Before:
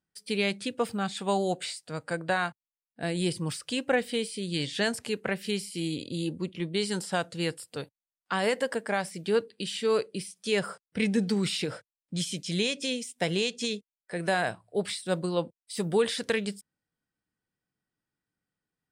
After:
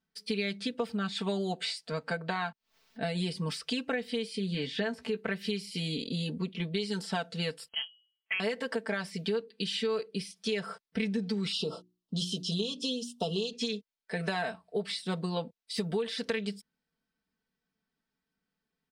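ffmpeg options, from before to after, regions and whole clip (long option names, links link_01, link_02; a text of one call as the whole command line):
ffmpeg -i in.wav -filter_complex "[0:a]asettb=1/sr,asplit=3[link_01][link_02][link_03];[link_01]atrim=end=1.924[link_04];[link_02]atrim=start=1.92:end=3.02,asetpts=PTS-STARTPTS,afade=type=in:duration=0.004:curve=qsin,afade=type=out:start_time=1.096:duration=0.004:curve=qsin,acompressor=mode=upward:threshold=-41dB:ratio=2.5:attack=3.2:release=140:knee=2.83:detection=peak,equalizer=frequency=11000:width_type=o:width=0.95:gain=-7.5[link_05];[link_03]atrim=start=3.016[link_06];[link_04][link_05]acrossfade=duration=0.004:curve1=hsin:curve2=qsin[link_07];[link_07][link_06]acrossfade=duration=0.004:curve1=qsin:curve2=hsin,asettb=1/sr,asplit=3[link_08][link_09][link_10];[link_08]atrim=end=4.364[link_11];[link_09]atrim=start=4.36:end=5.22,asetpts=PTS-STARTPTS,afade=type=in:duration=0.004:curve=qsin,afade=type=out:start_time=0.856:duration=0.004:curve=qsin,acrossover=split=2600[link_12][link_13];[link_13]acompressor=threshold=-45dB:ratio=4:attack=1:release=60[link_14];[link_12][link_14]amix=inputs=2:normalize=0,asplit=2[link_15][link_16];[link_16]adelay=16,volume=-11dB[link_17];[link_15][link_17]amix=inputs=2:normalize=0,atrim=end_sample=37926[link_18];[link_10]atrim=start=5.216[link_19];[link_11][link_18]acrossfade=duration=0.004:curve1=hsin:curve2=qsin[link_20];[link_20][link_19]acrossfade=duration=0.004:curve1=qsin:curve2=hsin,asettb=1/sr,asplit=3[link_21][link_22][link_23];[link_21]atrim=end=7.684[link_24];[link_22]atrim=start=7.68:end=8.4,asetpts=PTS-STARTPTS,afade=type=in:duration=0.004:curve=qsin,afade=type=out:start_time=0.716:duration=0.004:curve=qsin,aemphasis=mode=reproduction:type=75kf,bandreject=frequency=118.7:width_type=h:width=4,bandreject=frequency=237.4:width_type=h:width=4,bandreject=frequency=356.1:width_type=h:width=4,bandreject=frequency=474.8:width_type=h:width=4,bandreject=frequency=593.5:width_type=h:width=4,lowpass=frequency=2900:width_type=q:width=0.5098,lowpass=frequency=2900:width_type=q:width=0.6013,lowpass=frequency=2900:width_type=q:width=0.9,lowpass=frequency=2900:width_type=q:width=2.563,afreqshift=-3400[link_25];[link_23]atrim=start=8.396[link_26];[link_24][link_25]acrossfade=duration=0.004:curve1=hsin:curve2=qsin[link_27];[link_27][link_26]acrossfade=duration=0.004:curve1=qsin:curve2=hsin,asettb=1/sr,asplit=3[link_28][link_29][link_30];[link_28]atrim=end=11.524[link_31];[link_29]atrim=start=11.52:end=13.53,asetpts=PTS-STARTPTS,afade=type=in:duration=0.004:curve=qsin,afade=type=out:start_time=2.006:duration=0.004:curve=qsin,asuperstop=centerf=1900:order=12:qfactor=1.3,equalizer=frequency=360:width_type=o:width=0.23:gain=4.5,bandreject=frequency=60:width_type=h:width=6,bandreject=frequency=120:width_type=h:width=6,bandreject=frequency=180:width_type=h:width=6,bandreject=frequency=240:width_type=h:width=6,bandreject=frequency=300:width_type=h:width=6,bandreject=frequency=360:width_type=h:width=6[link_32];[link_30]atrim=start=13.526[link_33];[link_31][link_32]acrossfade=duration=0.004:curve1=hsin:curve2=qsin[link_34];[link_34][link_33]acrossfade=duration=0.004:curve1=qsin:curve2=hsin,highshelf=frequency=6200:width_type=q:width=1.5:gain=-7,aecho=1:1:4.5:0.93,acompressor=threshold=-29dB:ratio=6" out.wav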